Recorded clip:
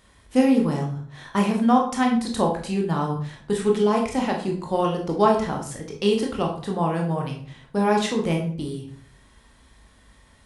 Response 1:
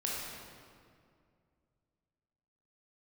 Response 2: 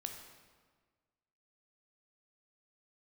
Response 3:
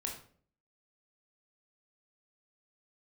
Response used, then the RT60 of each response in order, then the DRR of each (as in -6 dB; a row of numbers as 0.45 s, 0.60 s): 3; 2.2 s, 1.5 s, 0.50 s; -5.0 dB, 3.5 dB, 0.0 dB